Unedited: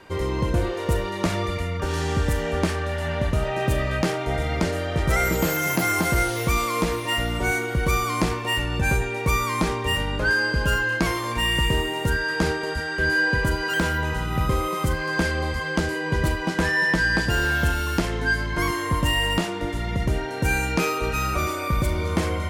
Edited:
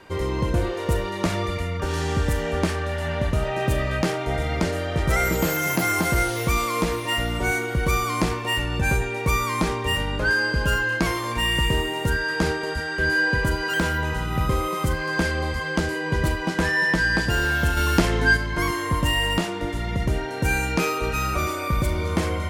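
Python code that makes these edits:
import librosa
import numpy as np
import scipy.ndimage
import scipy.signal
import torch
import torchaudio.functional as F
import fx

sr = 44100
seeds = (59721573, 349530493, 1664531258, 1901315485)

y = fx.edit(x, sr, fx.clip_gain(start_s=17.77, length_s=0.6, db=4.5), tone=tone)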